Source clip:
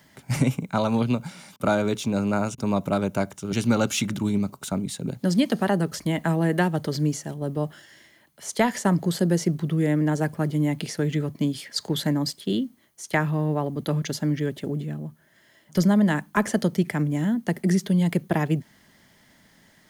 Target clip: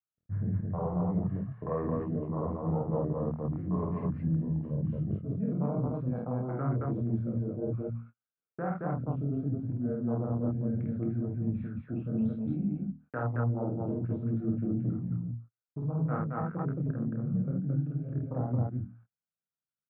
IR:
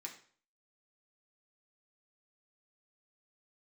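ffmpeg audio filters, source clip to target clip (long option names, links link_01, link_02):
-filter_complex "[0:a]highpass=110,afwtdn=0.0447,lowpass=frequency=2100:width=0.5412,lowpass=frequency=2100:width=1.3066,bandreject=frequency=50:width_type=h:width=6,bandreject=frequency=100:width_type=h:width=6,bandreject=frequency=150:width_type=h:width=6,bandreject=frequency=200:width_type=h:width=6,bandreject=frequency=250:width_type=h:width=6,bandreject=frequency=300:width_type=h:width=6,bandreject=frequency=350:width_type=h:width=6,agate=range=-36dB:threshold=-49dB:ratio=16:detection=peak,equalizer=frequency=490:width_type=o:width=0.38:gain=-4.5,alimiter=limit=-15.5dB:level=0:latency=1:release=337,areverse,acompressor=threshold=-35dB:ratio=10,areverse,flanger=delay=20:depth=6.6:speed=0.63,asetrate=34006,aresample=44100,atempo=1.29684,asplit=2[link_01][link_02];[link_02]aecho=0:1:49.56|221.6:0.794|0.891[link_03];[link_01][link_03]amix=inputs=2:normalize=0,volume=6.5dB"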